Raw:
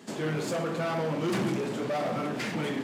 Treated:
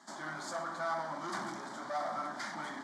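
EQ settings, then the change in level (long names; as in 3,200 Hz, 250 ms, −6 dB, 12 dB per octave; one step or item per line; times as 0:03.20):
band-pass filter 460–6,700 Hz
phaser with its sweep stopped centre 1,100 Hz, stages 4
0.0 dB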